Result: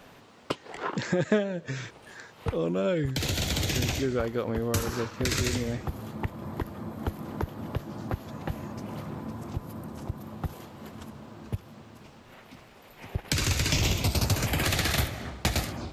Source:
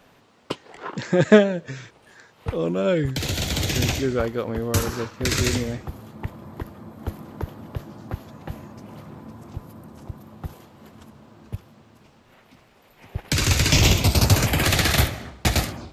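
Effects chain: compressor 2.5:1, threshold -32 dBFS, peak gain reduction 16 dB; gain +3.5 dB

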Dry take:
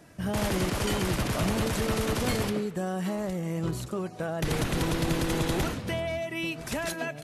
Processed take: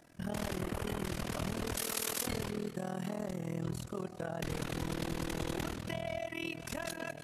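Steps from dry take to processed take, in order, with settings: on a send: split-band echo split 1000 Hz, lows 90 ms, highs 0.194 s, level -14.5 dB; on the sum: AM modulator 40 Hz, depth 90%; 0.59–1.04 bell 5300 Hz -9 dB 1.7 oct; limiter -23.5 dBFS, peak gain reduction 5 dB; 1.77–2.27 RIAA curve recording; gain -3.5 dB

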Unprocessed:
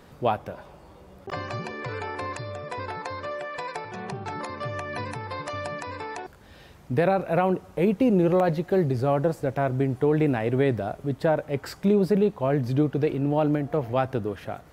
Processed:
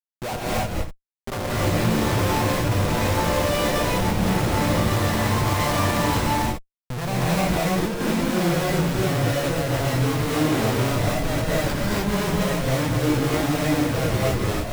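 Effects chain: 4.81–7.33 comb 1 ms, depth 62%; Schmitt trigger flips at -33 dBFS; non-linear reverb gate 0.33 s rising, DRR -6.5 dB; gain -2.5 dB

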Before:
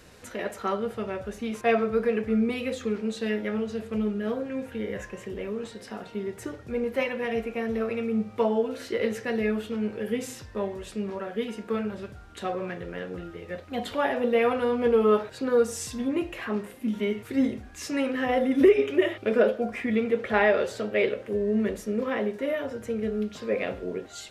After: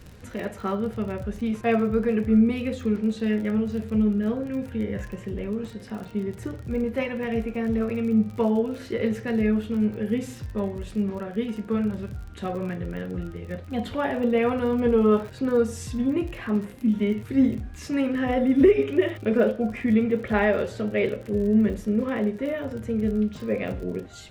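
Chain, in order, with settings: tone controls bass +13 dB, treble -4 dB; crackle 42/s -33 dBFS; gain -1.5 dB

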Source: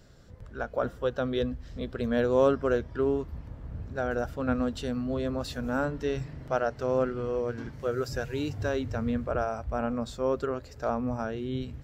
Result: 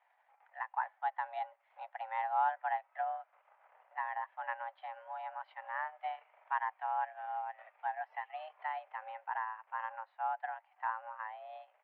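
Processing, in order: transient shaper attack +4 dB, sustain -7 dB; mistuned SSB +320 Hz 390–2500 Hz; gain -8.5 dB

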